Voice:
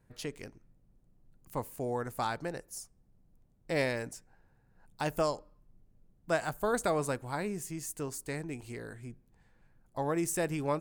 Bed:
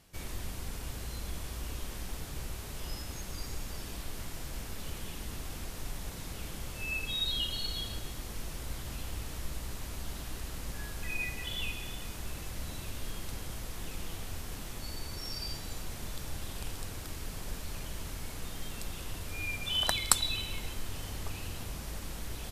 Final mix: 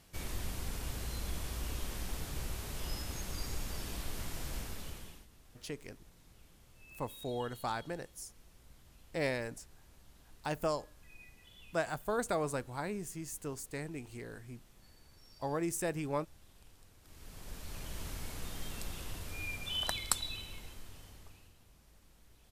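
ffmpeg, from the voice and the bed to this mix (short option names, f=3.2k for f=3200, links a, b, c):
-filter_complex "[0:a]adelay=5450,volume=-3.5dB[a];[1:a]volume=19dB,afade=t=out:st=4.54:d=0.73:silence=0.0891251,afade=t=in:st=17.01:d=1.03:silence=0.112202,afade=t=out:st=18.78:d=2.76:silence=0.0891251[b];[a][b]amix=inputs=2:normalize=0"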